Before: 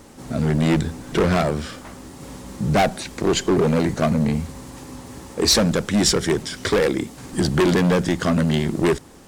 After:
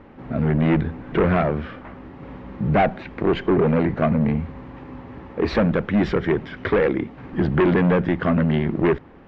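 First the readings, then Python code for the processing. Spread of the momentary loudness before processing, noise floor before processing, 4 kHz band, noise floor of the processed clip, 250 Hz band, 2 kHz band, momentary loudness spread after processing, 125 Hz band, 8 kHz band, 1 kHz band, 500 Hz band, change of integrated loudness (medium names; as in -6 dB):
20 LU, -42 dBFS, -14.5 dB, -44 dBFS, 0.0 dB, -0.5 dB, 20 LU, 0.0 dB, under -30 dB, 0.0 dB, 0.0 dB, -1.0 dB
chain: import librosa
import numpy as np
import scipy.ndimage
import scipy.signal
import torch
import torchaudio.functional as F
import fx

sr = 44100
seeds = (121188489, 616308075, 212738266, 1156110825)

y = scipy.signal.sosfilt(scipy.signal.butter(4, 2500.0, 'lowpass', fs=sr, output='sos'), x)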